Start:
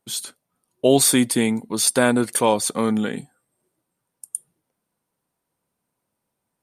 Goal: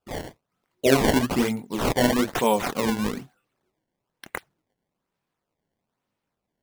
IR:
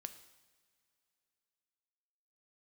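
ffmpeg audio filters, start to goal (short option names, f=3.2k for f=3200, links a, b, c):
-af "flanger=delay=19.5:depth=6.9:speed=1.3,acrusher=samples=20:mix=1:aa=0.000001:lfo=1:lforange=32:lforate=1.1"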